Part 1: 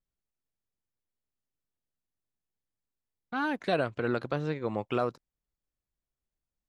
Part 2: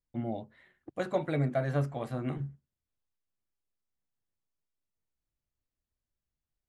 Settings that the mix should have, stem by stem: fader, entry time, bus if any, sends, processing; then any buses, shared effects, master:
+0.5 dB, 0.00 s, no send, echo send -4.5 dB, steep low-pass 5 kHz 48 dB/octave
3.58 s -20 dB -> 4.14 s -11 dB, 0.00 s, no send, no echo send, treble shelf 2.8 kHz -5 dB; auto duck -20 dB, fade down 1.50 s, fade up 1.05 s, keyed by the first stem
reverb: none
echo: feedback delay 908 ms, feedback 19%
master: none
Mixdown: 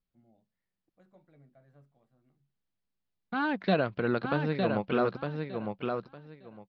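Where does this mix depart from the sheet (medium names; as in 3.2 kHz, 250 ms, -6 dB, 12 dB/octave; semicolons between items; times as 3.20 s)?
stem 2 -20.0 dB -> -31.5 dB; master: extra peaking EQ 190 Hz +10 dB 0.28 oct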